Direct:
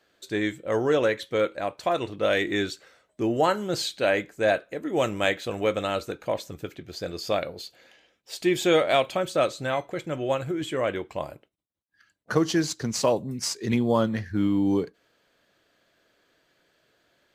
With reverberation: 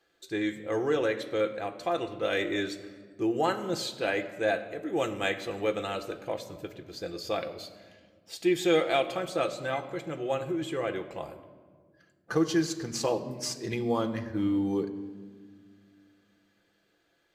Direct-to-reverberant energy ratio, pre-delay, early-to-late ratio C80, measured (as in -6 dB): 7.0 dB, 6 ms, 13.5 dB